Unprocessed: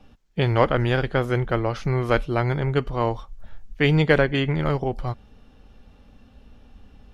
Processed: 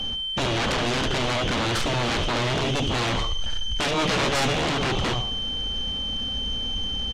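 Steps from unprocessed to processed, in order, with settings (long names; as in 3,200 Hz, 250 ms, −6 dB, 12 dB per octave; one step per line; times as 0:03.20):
variable-slope delta modulation 32 kbit/s
0:02.63–0:02.90: gain on a spectral selection 400–2,100 Hz −11 dB
brickwall limiter −18 dBFS, peak gain reduction 12 dB
downward compressor, threshold −25 dBFS, peak gain reduction 3.5 dB
repeating echo 71 ms, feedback 39%, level −10.5 dB
steady tone 3,100 Hz −43 dBFS
on a send at −20 dB: convolution reverb RT60 0.65 s, pre-delay 3 ms
on the sum: sine wavefolder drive 18 dB, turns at −15 dBFS
0:03.96–0:04.53: double-tracking delay 16 ms −4 dB
level −6 dB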